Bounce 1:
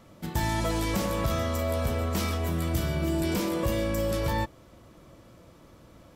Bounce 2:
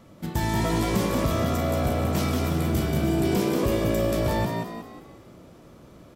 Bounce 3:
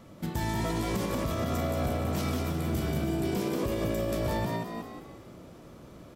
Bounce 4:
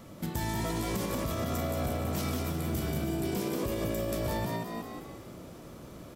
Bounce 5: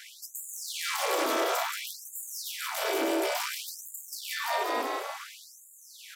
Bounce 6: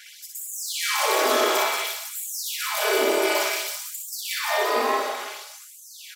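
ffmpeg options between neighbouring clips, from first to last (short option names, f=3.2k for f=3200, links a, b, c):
-filter_complex "[0:a]equalizer=f=220:w=0.58:g=4,asplit=2[a][b];[b]asplit=5[c][d][e][f][g];[c]adelay=182,afreqshift=60,volume=-4dB[h];[d]adelay=364,afreqshift=120,volume=-11.7dB[i];[e]adelay=546,afreqshift=180,volume=-19.5dB[j];[f]adelay=728,afreqshift=240,volume=-27.2dB[k];[g]adelay=910,afreqshift=300,volume=-35dB[l];[h][i][j][k][l]amix=inputs=5:normalize=0[m];[a][m]amix=inputs=2:normalize=0"
-af "alimiter=limit=-21dB:level=0:latency=1:release=229"
-filter_complex "[0:a]highshelf=f=6.9k:g=7,asplit=2[a][b];[b]acompressor=threshold=-38dB:ratio=6,volume=2dB[c];[a][c]amix=inputs=2:normalize=0,volume=-5dB"
-filter_complex "[0:a]tremolo=f=250:d=0.974,asplit=2[a][b];[b]highpass=f=720:p=1,volume=21dB,asoftclip=type=tanh:threshold=-22dB[c];[a][c]amix=inputs=2:normalize=0,lowpass=f=5.1k:p=1,volume=-6dB,afftfilt=real='re*gte(b*sr/1024,250*pow(6800/250,0.5+0.5*sin(2*PI*0.57*pts/sr)))':imag='im*gte(b*sr/1024,250*pow(6800/250,0.5+0.5*sin(2*PI*0.57*pts/sr)))':win_size=1024:overlap=0.75,volume=5dB"
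-af "aecho=1:1:4.8:0.65,dynaudnorm=f=260:g=3:m=4dB,aecho=1:1:60|129|208.4|299.6|404.5:0.631|0.398|0.251|0.158|0.1"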